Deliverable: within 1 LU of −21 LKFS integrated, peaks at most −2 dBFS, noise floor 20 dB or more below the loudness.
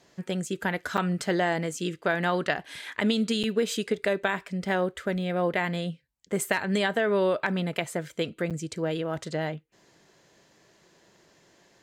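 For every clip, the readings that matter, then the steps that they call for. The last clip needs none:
number of dropouts 3; longest dropout 7.3 ms; integrated loudness −28.5 LKFS; sample peak −11.0 dBFS; target loudness −21.0 LKFS
→ repair the gap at 0:00.97/0:03.43/0:08.50, 7.3 ms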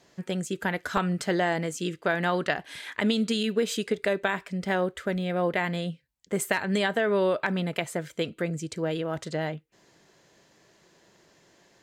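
number of dropouts 0; integrated loudness −28.5 LKFS; sample peak −11.0 dBFS; target loudness −21.0 LKFS
→ level +7.5 dB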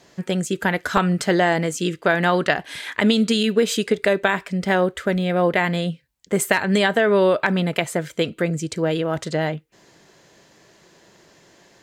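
integrated loudness −21.0 LKFS; sample peak −3.5 dBFS; background noise floor −55 dBFS

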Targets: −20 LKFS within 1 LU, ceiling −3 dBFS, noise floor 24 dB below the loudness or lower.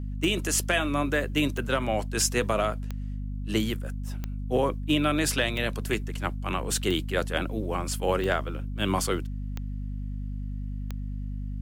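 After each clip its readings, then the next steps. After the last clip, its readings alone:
number of clicks 9; mains hum 50 Hz; hum harmonics up to 250 Hz; level of the hum −30 dBFS; integrated loudness −28.5 LKFS; sample peak −11.0 dBFS; target loudness −20.0 LKFS
→ click removal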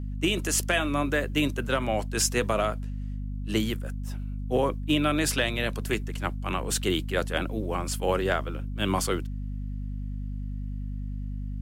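number of clicks 1; mains hum 50 Hz; hum harmonics up to 250 Hz; level of the hum −30 dBFS
→ mains-hum notches 50/100/150/200/250 Hz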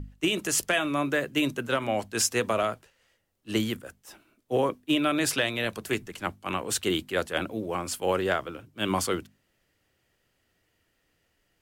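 mains hum none found; integrated loudness −28.0 LKFS; sample peak −11.5 dBFS; target loudness −20.0 LKFS
→ level +8 dB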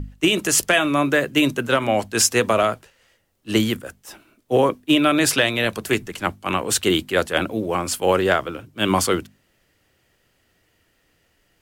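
integrated loudness −20.0 LKFS; sample peak −3.5 dBFS; background noise floor −65 dBFS

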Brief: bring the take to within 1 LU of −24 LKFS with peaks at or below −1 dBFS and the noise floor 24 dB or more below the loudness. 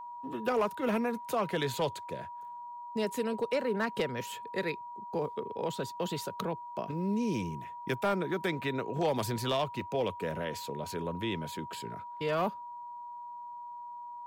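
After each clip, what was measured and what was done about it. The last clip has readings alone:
share of clipped samples 0.5%; peaks flattened at −23.0 dBFS; interfering tone 960 Hz; level of the tone −41 dBFS; integrated loudness −34.5 LKFS; sample peak −23.0 dBFS; target loudness −24.0 LKFS
→ clipped peaks rebuilt −23 dBFS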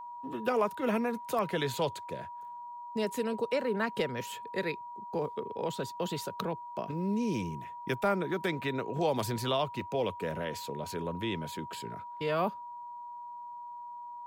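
share of clipped samples 0.0%; interfering tone 960 Hz; level of the tone −41 dBFS
→ notch filter 960 Hz, Q 30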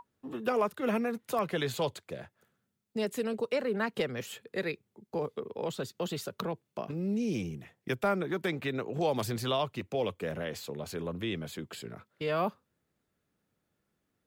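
interfering tone none found; integrated loudness −34.0 LKFS; sample peak −17.5 dBFS; target loudness −24.0 LKFS
→ level +10 dB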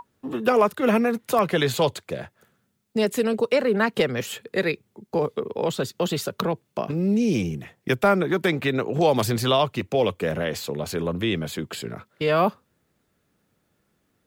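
integrated loudness −24.0 LKFS; sample peak −7.5 dBFS; background noise floor −71 dBFS

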